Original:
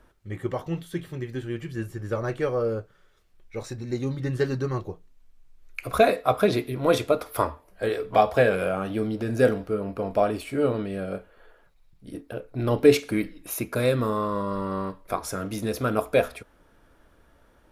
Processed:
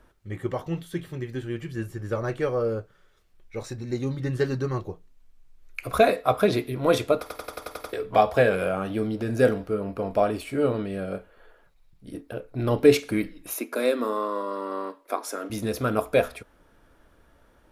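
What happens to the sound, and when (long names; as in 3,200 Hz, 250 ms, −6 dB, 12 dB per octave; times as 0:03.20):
0:07.21: stutter in place 0.09 s, 8 plays
0:13.53–0:15.50: elliptic high-pass filter 240 Hz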